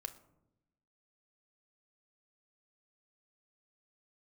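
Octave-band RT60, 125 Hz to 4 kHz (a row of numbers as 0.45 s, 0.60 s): 1.2 s, 1.2 s, 1.0 s, 0.75 s, 0.50 s, 0.35 s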